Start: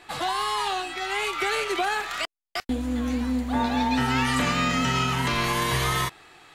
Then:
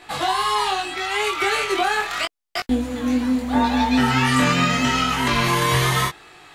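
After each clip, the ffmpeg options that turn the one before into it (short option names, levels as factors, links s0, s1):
-af "flanger=delay=19:depth=4.8:speed=0.79,volume=2.51"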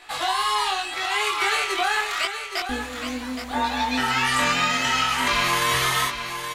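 -filter_complex "[0:a]equalizer=f=160:w=0.42:g=-14,asplit=2[s0][s1];[s1]aecho=0:1:820:0.376[s2];[s0][s2]amix=inputs=2:normalize=0"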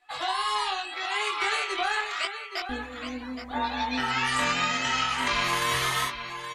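-af "aeval=exprs='0.335*(cos(1*acos(clip(val(0)/0.335,-1,1)))-cos(1*PI/2))+0.0299*(cos(3*acos(clip(val(0)/0.335,-1,1)))-cos(3*PI/2))':c=same,afftdn=nr=18:nf=-41,volume=0.75"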